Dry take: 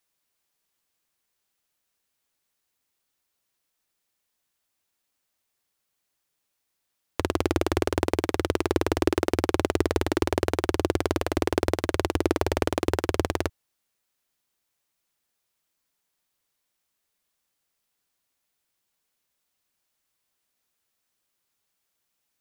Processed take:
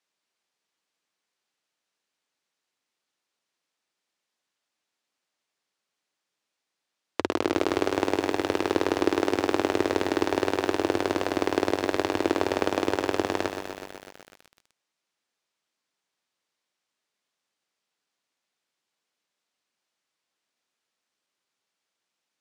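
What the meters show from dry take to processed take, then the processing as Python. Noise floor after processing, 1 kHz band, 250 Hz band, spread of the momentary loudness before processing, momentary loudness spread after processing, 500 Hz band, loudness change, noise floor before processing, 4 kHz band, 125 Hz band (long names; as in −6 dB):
−84 dBFS, +1.5 dB, 0.0 dB, 2 LU, 7 LU, +0.5 dB, 0.0 dB, −79 dBFS, +1.0 dB, −9.5 dB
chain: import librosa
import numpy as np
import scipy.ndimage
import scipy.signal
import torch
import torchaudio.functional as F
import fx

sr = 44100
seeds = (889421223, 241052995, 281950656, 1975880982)

y = fx.bandpass_edges(x, sr, low_hz=190.0, high_hz=6200.0)
y = fx.echo_crushed(y, sr, ms=125, feedback_pct=80, bits=7, wet_db=-7.5)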